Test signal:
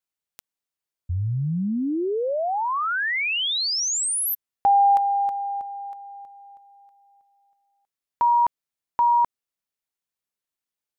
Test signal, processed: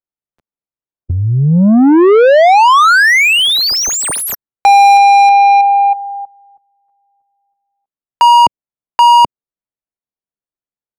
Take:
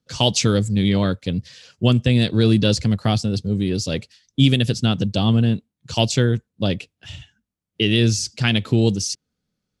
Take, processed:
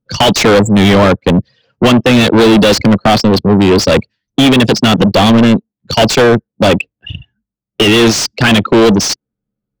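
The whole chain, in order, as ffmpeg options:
-filter_complex "[0:a]anlmdn=158,acrossover=split=190[a][b];[a]acompressor=threshold=-28dB:ratio=12:attack=27:release=664:knee=1:detection=rms[c];[c][b]amix=inputs=2:normalize=0,asplit=2[d][e];[e]highpass=f=720:p=1,volume=35dB,asoftclip=type=tanh:threshold=-3dB[f];[d][f]amix=inputs=2:normalize=0,lowpass=f=2k:p=1,volume=-6dB,volume=4dB"

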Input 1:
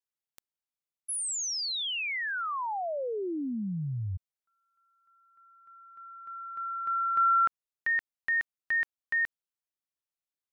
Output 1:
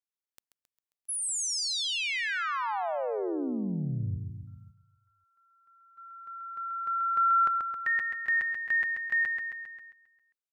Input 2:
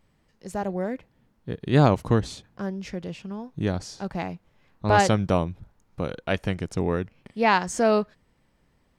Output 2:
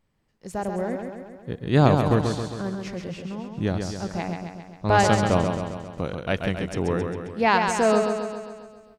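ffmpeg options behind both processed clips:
-filter_complex "[0:a]asplit=2[a][b];[b]aecho=0:1:134|268|402|536|670|804|938|1072:0.531|0.313|0.185|0.109|0.0643|0.038|0.0224|0.0132[c];[a][c]amix=inputs=2:normalize=0,agate=range=-7dB:threshold=-49dB:ratio=16:release=196:detection=rms"

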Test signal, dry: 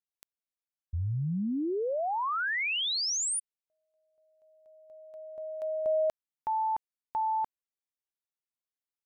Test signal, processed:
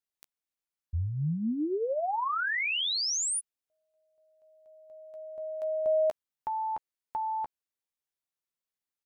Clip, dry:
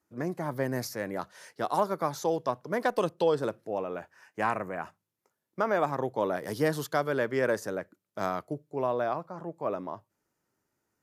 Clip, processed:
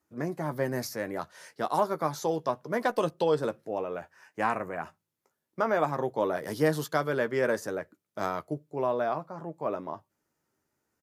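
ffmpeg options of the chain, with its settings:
-filter_complex "[0:a]asplit=2[a][b];[b]adelay=13,volume=-9.5dB[c];[a][c]amix=inputs=2:normalize=0"

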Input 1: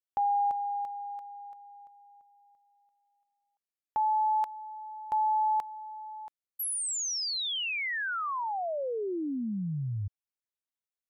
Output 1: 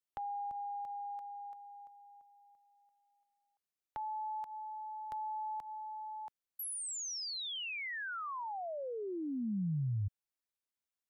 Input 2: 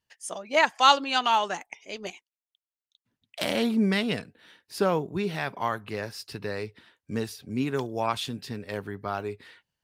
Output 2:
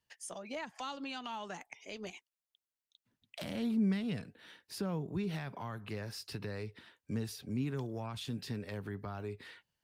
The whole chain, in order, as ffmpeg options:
-filter_complex "[0:a]acrossover=split=200[a][b];[b]acompressor=threshold=-38dB:ratio=5:attack=1.4:release=168:knee=2.83:detection=peak[c];[a][c]amix=inputs=2:normalize=0,volume=-1.5dB"

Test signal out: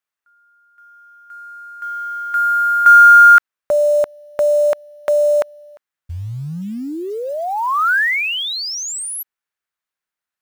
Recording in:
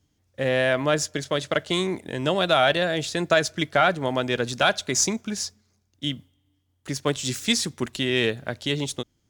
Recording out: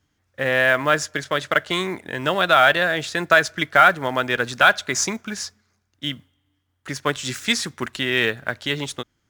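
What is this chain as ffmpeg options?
-af "equalizer=f=1.5k:w=0.86:g=11.5,acrusher=bits=7:mode=log:mix=0:aa=0.000001,volume=-2dB"

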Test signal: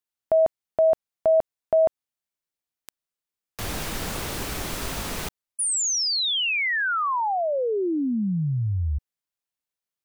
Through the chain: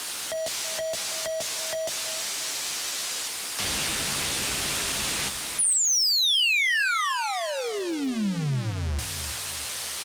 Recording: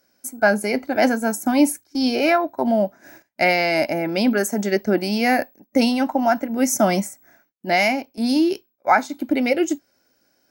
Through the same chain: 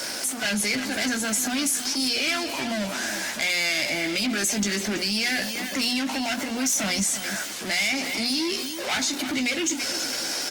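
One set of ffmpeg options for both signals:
-filter_complex "[0:a]aeval=exprs='val(0)+0.5*0.0355*sgn(val(0))':c=same,lowpass=6.7k,highshelf=f=3.9k:g=10.5,asplit=2[a][b];[b]adelay=15,volume=-8dB[c];[a][c]amix=inputs=2:normalize=0,acrossover=split=130[d][e];[e]asoftclip=type=hard:threshold=-15.5dB[f];[d][f]amix=inputs=2:normalize=0,acrossover=split=230|1800[g][h][i];[h]acompressor=threshold=-34dB:ratio=8:attack=0.73:release=75:knee=2.83:detection=peak[j];[g][j][i]amix=inputs=3:normalize=0,highpass=52,lowshelf=f=230:g=-11,bandreject=f=60:t=h:w=6,bandreject=f=120:t=h:w=6,bandreject=f=180:t=h:w=6,bandreject=f=240:t=h:w=6,asplit=2[k][l];[l]adelay=328,lowpass=f=4.9k:p=1,volume=-12dB,asplit=2[m][n];[n]adelay=328,lowpass=f=4.9k:p=1,volume=0.35,asplit=2[o][p];[p]adelay=328,lowpass=f=4.9k:p=1,volume=0.35,asplit=2[q][r];[r]adelay=328,lowpass=f=4.9k:p=1,volume=0.35[s];[k][m][o][q][s]amix=inputs=5:normalize=0,acompressor=threshold=-24dB:ratio=16:attack=1.4:release=27:knee=6:detection=rms,volume=5dB" -ar 48000 -c:a libopus -b:a 32k

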